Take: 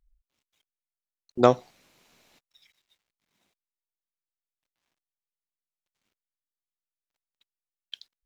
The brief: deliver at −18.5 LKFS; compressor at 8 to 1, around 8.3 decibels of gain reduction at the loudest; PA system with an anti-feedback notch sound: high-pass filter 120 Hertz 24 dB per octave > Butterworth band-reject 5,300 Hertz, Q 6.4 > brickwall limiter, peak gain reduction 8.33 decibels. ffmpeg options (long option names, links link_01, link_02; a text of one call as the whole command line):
ffmpeg -i in.wav -af "acompressor=threshold=-19dB:ratio=8,highpass=frequency=120:width=0.5412,highpass=frequency=120:width=1.3066,asuperstop=centerf=5300:order=8:qfactor=6.4,volume=17dB,alimiter=limit=-0.5dB:level=0:latency=1" out.wav